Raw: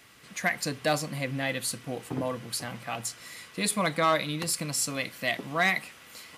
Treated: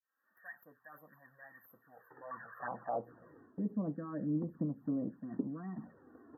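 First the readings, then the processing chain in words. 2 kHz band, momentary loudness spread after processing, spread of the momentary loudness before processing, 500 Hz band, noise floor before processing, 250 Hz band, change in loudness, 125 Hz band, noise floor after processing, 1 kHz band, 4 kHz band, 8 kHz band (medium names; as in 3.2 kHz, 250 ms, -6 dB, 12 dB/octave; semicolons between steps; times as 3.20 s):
-22.5 dB, 20 LU, 11 LU, -13.5 dB, -52 dBFS, -3.0 dB, -10.5 dB, -8.0 dB, -78 dBFS, -14.5 dB, under -40 dB, under -40 dB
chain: fade-in on the opening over 0.83 s; reverse; compression 8:1, threshold -34 dBFS, peak gain reduction 14.5 dB; reverse; band-pass sweep 4.9 kHz -> 250 Hz, 1.93–3.32 s; touch-sensitive flanger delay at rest 3.9 ms, full sweep at -43 dBFS; brick-wall FIR band-stop 1.9–12 kHz; trim +11 dB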